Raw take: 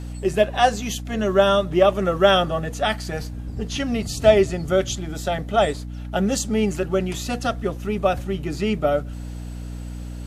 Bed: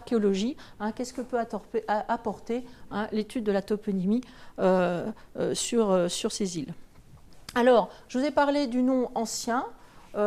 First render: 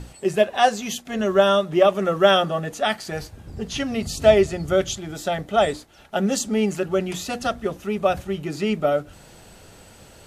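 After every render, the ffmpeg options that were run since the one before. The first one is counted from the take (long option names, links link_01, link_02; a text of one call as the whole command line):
ffmpeg -i in.wav -af "bandreject=frequency=60:width_type=h:width=6,bandreject=frequency=120:width_type=h:width=6,bandreject=frequency=180:width_type=h:width=6,bandreject=frequency=240:width_type=h:width=6,bandreject=frequency=300:width_type=h:width=6" out.wav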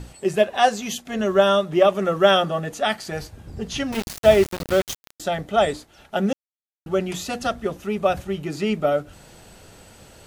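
ffmpeg -i in.wav -filter_complex "[0:a]asettb=1/sr,asplit=3[link_01][link_02][link_03];[link_01]atrim=end=3.924[link_04];[link_02]atrim=start=3.92:end=5.2,asetpts=PTS-STARTPTS,afade=type=in:duration=0.004:curve=qsin,afade=type=out:start_time=1.276:duration=0.004:curve=qsin,aeval=exprs='val(0)*gte(abs(val(0)),0.0631)':channel_layout=same[link_05];[link_03]atrim=start=5.196[link_06];[link_04][link_05]acrossfade=duration=0.004:curve1=hsin:curve2=qsin[link_07];[link_07][link_06]acrossfade=duration=0.004:curve1=qsin:curve2=hsin,asplit=3[link_08][link_09][link_10];[link_08]atrim=end=6.33,asetpts=PTS-STARTPTS,afade=type=out:start_time=6.326:duration=0.004:curve=hsin[link_11];[link_09]atrim=start=6.33:end=6.86,asetpts=PTS-STARTPTS,volume=0[link_12];[link_10]atrim=start=6.86,asetpts=PTS-STARTPTS,afade=type=in:duration=0.004:curve=hsin[link_13];[link_11][link_12][link_13]concat=n=3:v=0:a=1" out.wav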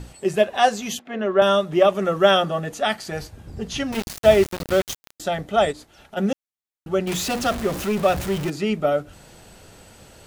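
ffmpeg -i in.wav -filter_complex "[0:a]asettb=1/sr,asplit=3[link_01][link_02][link_03];[link_01]atrim=end=0.994[link_04];[link_02]atrim=start=0.99:end=1.42,asetpts=PTS-STARTPTS,afade=type=in:duration=0.004:curve=qsin,afade=type=out:start_time=0.426:duration=0.004:curve=qsin,acrossover=split=190 3200:gain=0.0631 1 0.0631[link_05][link_06][link_07];[link_05][link_06][link_07]amix=inputs=3:normalize=0[link_08];[link_03]atrim=start=1.416[link_09];[link_04][link_08]acrossfade=duration=0.004:curve1=hsin:curve2=qsin[link_10];[link_10][link_09]acrossfade=duration=0.004:curve1=qsin:curve2=hsin,asplit=3[link_11][link_12][link_13];[link_11]afade=type=out:start_time=5.71:duration=0.02[link_14];[link_12]acompressor=threshold=-36dB:ratio=4:attack=3.2:release=140:knee=1:detection=peak,afade=type=in:start_time=5.71:duration=0.02,afade=type=out:start_time=6.16:duration=0.02[link_15];[link_13]afade=type=in:start_time=6.16:duration=0.02[link_16];[link_14][link_15][link_16]amix=inputs=3:normalize=0,asettb=1/sr,asplit=3[link_17][link_18][link_19];[link_17]atrim=end=7.074[link_20];[link_18]atrim=start=7.07:end=8.5,asetpts=PTS-STARTPTS,afade=type=in:duration=0.004:curve=qsin,afade=type=out:start_time=1.426:duration=0.004:curve=qsin,aeval=exprs='val(0)+0.5*0.0531*sgn(val(0))':channel_layout=same[link_21];[link_19]atrim=start=8.496[link_22];[link_20][link_21]acrossfade=duration=0.004:curve1=hsin:curve2=qsin[link_23];[link_23][link_22]acrossfade=duration=0.004:curve1=qsin:curve2=hsin" out.wav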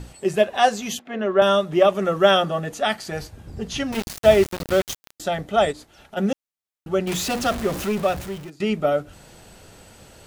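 ffmpeg -i in.wav -filter_complex "[0:a]asplit=2[link_01][link_02];[link_01]atrim=end=8.6,asetpts=PTS-STARTPTS,afade=type=out:start_time=7.85:duration=0.75:silence=0.0891251[link_03];[link_02]atrim=start=8.6,asetpts=PTS-STARTPTS,afade=type=in:duration=0.004:curve=hsin:silence=0.0891251[link_04];[link_03][link_04]concat=n=2:v=0:a=1" out.wav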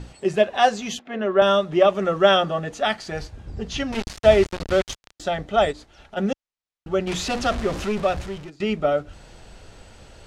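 ffmpeg -i in.wav -af "lowpass=6300,asubboost=boost=2.5:cutoff=78" out.wav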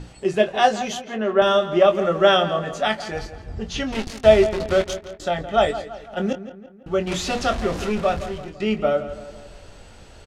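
ffmpeg -i in.wav -filter_complex "[0:a]asplit=2[link_01][link_02];[link_02]adelay=23,volume=-8.5dB[link_03];[link_01][link_03]amix=inputs=2:normalize=0,asplit=2[link_04][link_05];[link_05]adelay=167,lowpass=frequency=3100:poles=1,volume=-12.5dB,asplit=2[link_06][link_07];[link_07]adelay=167,lowpass=frequency=3100:poles=1,volume=0.5,asplit=2[link_08][link_09];[link_09]adelay=167,lowpass=frequency=3100:poles=1,volume=0.5,asplit=2[link_10][link_11];[link_11]adelay=167,lowpass=frequency=3100:poles=1,volume=0.5,asplit=2[link_12][link_13];[link_13]adelay=167,lowpass=frequency=3100:poles=1,volume=0.5[link_14];[link_04][link_06][link_08][link_10][link_12][link_14]amix=inputs=6:normalize=0" out.wav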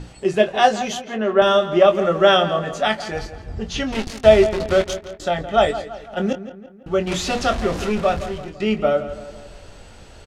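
ffmpeg -i in.wav -af "volume=2dB,alimiter=limit=-1dB:level=0:latency=1" out.wav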